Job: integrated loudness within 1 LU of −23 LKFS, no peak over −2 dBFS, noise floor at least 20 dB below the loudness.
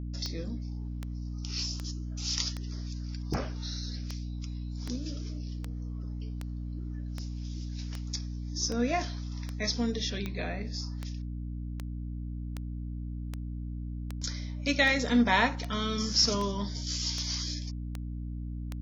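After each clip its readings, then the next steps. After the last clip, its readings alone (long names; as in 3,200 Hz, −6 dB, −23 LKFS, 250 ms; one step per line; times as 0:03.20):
number of clicks 25; mains hum 60 Hz; hum harmonics up to 300 Hz; level of the hum −34 dBFS; integrated loudness −33.0 LKFS; sample peak −11.5 dBFS; target loudness −23.0 LKFS
→ click removal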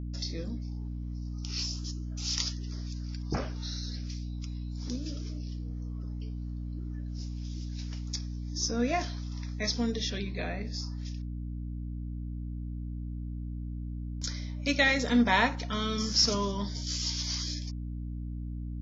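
number of clicks 0; mains hum 60 Hz; hum harmonics up to 300 Hz; level of the hum −34 dBFS
→ hum removal 60 Hz, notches 5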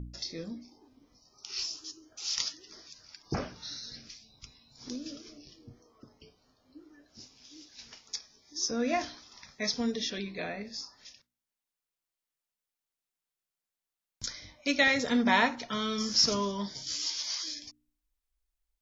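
mains hum none found; integrated loudness −31.5 LKFS; sample peak −11.0 dBFS; target loudness −23.0 LKFS
→ level +8.5 dB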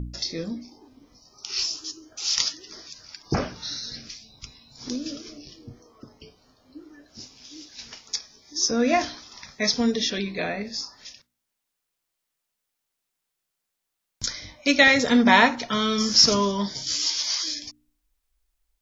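integrated loudness −23.0 LKFS; sample peak −2.5 dBFS; background noise floor −82 dBFS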